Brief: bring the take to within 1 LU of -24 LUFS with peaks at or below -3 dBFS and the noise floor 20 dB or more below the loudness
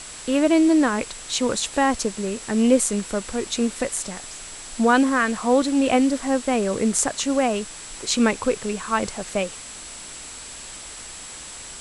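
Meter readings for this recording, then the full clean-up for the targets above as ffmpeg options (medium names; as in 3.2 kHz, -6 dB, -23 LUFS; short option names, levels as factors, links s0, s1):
steady tone 7.7 kHz; tone level -40 dBFS; noise floor -38 dBFS; noise floor target -42 dBFS; loudness -22.0 LUFS; peak level -2.5 dBFS; loudness target -24.0 LUFS
-> -af "bandreject=f=7700:w=30"
-af "afftdn=nr=6:nf=-38"
-af "volume=0.794"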